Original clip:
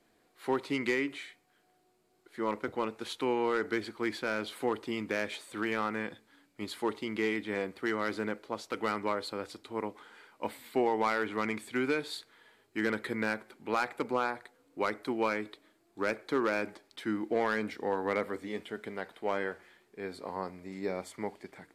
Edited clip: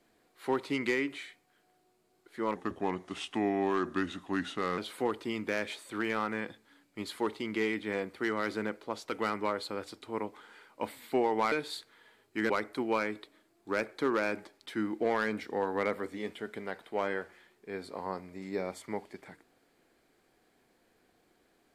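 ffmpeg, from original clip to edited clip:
-filter_complex "[0:a]asplit=5[s0][s1][s2][s3][s4];[s0]atrim=end=2.554[s5];[s1]atrim=start=2.55:end=4.4,asetpts=PTS-STARTPTS,asetrate=36603,aresample=44100,atrim=end_sample=98295,asetpts=PTS-STARTPTS[s6];[s2]atrim=start=4.396:end=11.142[s7];[s3]atrim=start=11.918:end=12.902[s8];[s4]atrim=start=14.798[s9];[s5][s6]acrossfade=d=0.004:c1=hsin:c2=hsin[s10];[s10][s7]acrossfade=d=0.004:c1=hsin:c2=hsin[s11];[s11][s8]acrossfade=d=0.004:c1=hsin:c2=hsin[s12];[s12][s9]acrossfade=d=0.004:c1=hsin:c2=hsin"

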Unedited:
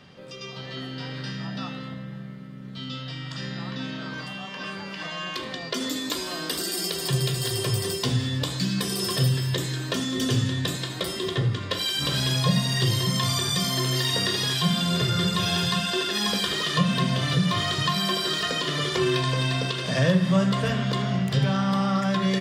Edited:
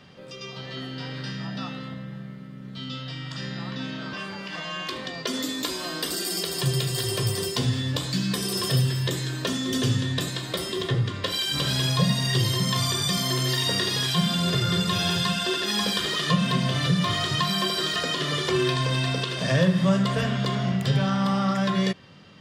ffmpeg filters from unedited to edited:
-filter_complex "[0:a]asplit=2[s0][s1];[s0]atrim=end=4.132[s2];[s1]atrim=start=4.598[s3];[s2][s3]acrossfade=d=0.004:c1=hsin:c2=hsin"

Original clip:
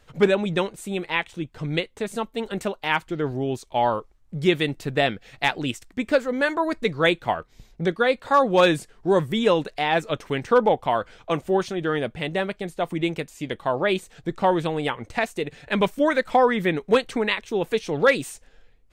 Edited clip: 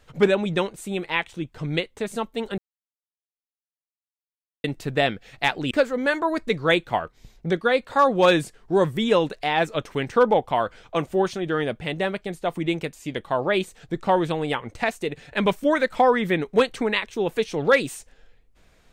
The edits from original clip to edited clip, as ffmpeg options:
-filter_complex "[0:a]asplit=4[s0][s1][s2][s3];[s0]atrim=end=2.58,asetpts=PTS-STARTPTS,afade=t=out:st=2.576:d=0.004:c=hsin[s4];[s1]atrim=start=2.58:end=4.64,asetpts=PTS-STARTPTS,volume=0[s5];[s2]atrim=start=4.64:end=5.712,asetpts=PTS-STARTPTS,afade=t=in:d=0.004:c=hsin[s6];[s3]atrim=start=6.058[s7];[s4][s5][s6]concat=n=3:v=0:a=1[s8];[s8][s7]acrossfade=d=0.004:c1=hsin:c2=hsin"

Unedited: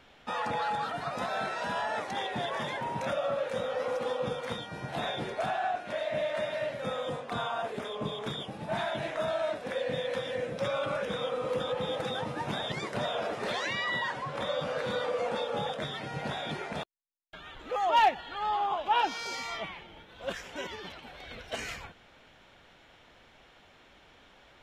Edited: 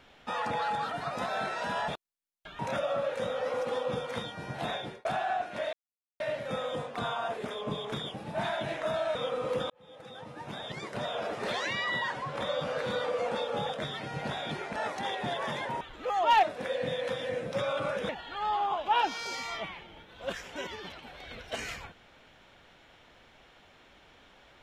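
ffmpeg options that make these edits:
-filter_complex "[0:a]asplit=12[s0][s1][s2][s3][s4][s5][s6][s7][s8][s9][s10][s11];[s0]atrim=end=1.882[s12];[s1]atrim=start=16.758:end=17.472[s13];[s2]atrim=start=2.928:end=5.39,asetpts=PTS-STARTPTS,afade=t=out:st=1.992:d=0.47:c=qsin[s14];[s3]atrim=start=5.39:end=6.07,asetpts=PTS-STARTPTS,afade=t=in:d=0.004:c=hsin,afade=t=out:st=0.676:d=0.004:c=hsin[s15];[s4]atrim=start=6.07:end=6.54,asetpts=PTS-STARTPTS,volume=0[s16];[s5]atrim=start=6.54:end=9.492,asetpts=PTS-STARTPTS,afade=t=in:d=0.004:c=hsin[s17];[s6]atrim=start=11.148:end=11.7,asetpts=PTS-STARTPTS,afade=t=out:st=0.548:d=0.004:c=hsin[s18];[s7]atrim=start=11.7:end=16.762,asetpts=PTS-STARTPTS,afade=t=in:d=1.81[s19];[s8]atrim=start=1.878:end=2.932[s20];[s9]atrim=start=17.468:end=18.092[s21];[s10]atrim=start=9.488:end=11.152[s22];[s11]atrim=start=18.088[s23];[s12][s13]acrossfade=d=0.004:c1=hsin:c2=hsin[s24];[s14][s15][s16][s17]concat=n=4:v=0:a=1[s25];[s24][s25]acrossfade=d=0.004:c1=hsin:c2=hsin[s26];[s18][s19]concat=n=2:v=0:a=1[s27];[s26][s27]acrossfade=d=0.004:c1=hsin:c2=hsin[s28];[s28][s20]acrossfade=d=0.004:c1=hsin:c2=hsin[s29];[s29][s21]acrossfade=d=0.004:c1=hsin:c2=hsin[s30];[s30][s22]acrossfade=d=0.004:c1=hsin:c2=hsin[s31];[s31][s23]acrossfade=d=0.004:c1=hsin:c2=hsin"

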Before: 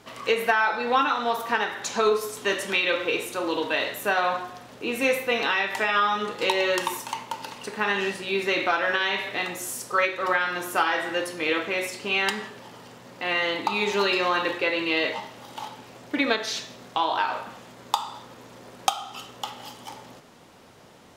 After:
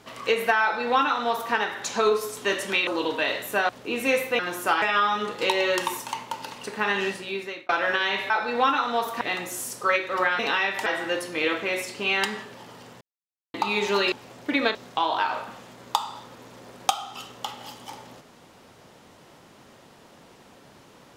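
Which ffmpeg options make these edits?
-filter_complex "[0:a]asplit=14[s0][s1][s2][s3][s4][s5][s6][s7][s8][s9][s10][s11][s12][s13];[s0]atrim=end=2.872[s14];[s1]atrim=start=3.388:end=4.212[s15];[s2]atrim=start=4.648:end=5.352[s16];[s3]atrim=start=10.478:end=10.912[s17];[s4]atrim=start=5.818:end=8.69,asetpts=PTS-STARTPTS,afade=t=out:st=2.262:d=0.61[s18];[s5]atrim=start=8.69:end=9.302,asetpts=PTS-STARTPTS,afade=t=in:d=0.004:c=hsin[s19];[s6]atrim=start=0.618:end=1.532[s20];[s7]atrim=start=9.298:end=10.482[s21];[s8]atrim=start=5.348:end=5.822[s22];[s9]atrim=start=10.908:end=13.06,asetpts=PTS-STARTPTS,afade=t=out:st=2.148:d=0.004:c=hsin[s23];[s10]atrim=start=13.06:end=13.59,asetpts=PTS-STARTPTS,volume=0[s24];[s11]atrim=start=13.59:end=14.172,asetpts=PTS-STARTPTS,afade=t=in:d=0.004:c=hsin[s25];[s12]atrim=start=15.768:end=16.402[s26];[s13]atrim=start=16.738[s27];[s14][s15]acrossfade=d=0.004:c1=hsin:c2=hsin[s28];[s28][s16]acrossfade=d=0.004:c1=hsin:c2=hsin[s29];[s29][s17]acrossfade=d=0.004:c1=hsin:c2=hsin[s30];[s18][s19]concat=n=2:v=0:a=1[s31];[s30][s31]acrossfade=d=0.004:c1=hsin:c2=hsin[s32];[s32][s20]acrossfade=d=0.004:c1=hsin:c2=hsin[s33];[s33][s21]acrossfade=d=0.004:c1=hsin:c2=hsin[s34];[s34][s22]acrossfade=d=0.004:c1=hsin:c2=hsin[s35];[s23][s24][s25]concat=n=3:v=0:a=1[s36];[s35][s36]acrossfade=d=0.004:c1=hsin:c2=hsin[s37];[s37][s26]acrossfade=d=0.004:c1=hsin:c2=hsin[s38];[s38][s27]acrossfade=d=0.004:c1=hsin:c2=hsin"

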